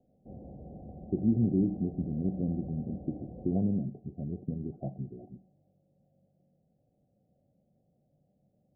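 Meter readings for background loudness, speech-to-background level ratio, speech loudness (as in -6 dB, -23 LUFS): -47.5 LUFS, 14.5 dB, -33.0 LUFS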